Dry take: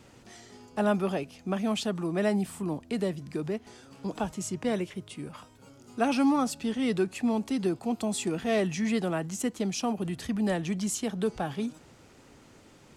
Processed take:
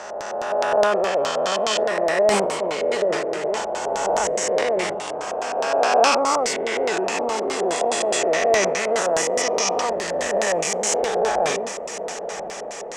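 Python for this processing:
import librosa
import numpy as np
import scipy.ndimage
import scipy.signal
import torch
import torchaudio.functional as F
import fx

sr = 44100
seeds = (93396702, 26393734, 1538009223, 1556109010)

y = fx.spec_swells(x, sr, rise_s=2.85)
y = fx.graphic_eq_10(y, sr, hz=(125, 250, 500, 1000, 2000, 4000, 8000), db=(-10, -10, 8, 8, 7, -6, 3))
y = fx.echo_diffused(y, sr, ms=1080, feedback_pct=72, wet_db=-11.5)
y = fx.filter_lfo_lowpass(y, sr, shape='square', hz=4.8, low_hz=610.0, high_hz=5600.0, q=2.1)
y = fx.high_shelf(y, sr, hz=2600.0, db=10.0)
y = fx.sustainer(y, sr, db_per_s=39.0)
y = y * 10.0 ** (-4.0 / 20.0)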